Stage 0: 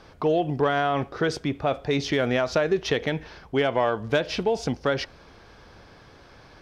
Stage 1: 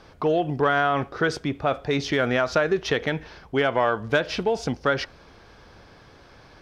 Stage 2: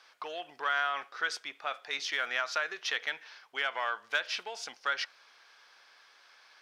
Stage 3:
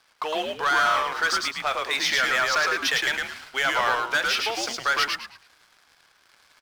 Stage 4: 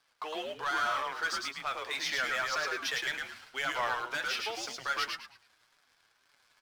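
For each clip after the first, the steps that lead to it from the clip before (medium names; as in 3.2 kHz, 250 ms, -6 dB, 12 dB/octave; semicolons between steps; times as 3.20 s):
dynamic bell 1.4 kHz, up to +6 dB, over -39 dBFS, Q 1.8
high-pass 1.4 kHz 12 dB/octave; trim -3 dB
waveshaping leveller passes 3; on a send: frequency-shifting echo 108 ms, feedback 30%, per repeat -110 Hz, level -3 dB
flange 1.9 Hz, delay 6.7 ms, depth 2.8 ms, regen +35%; trim -6 dB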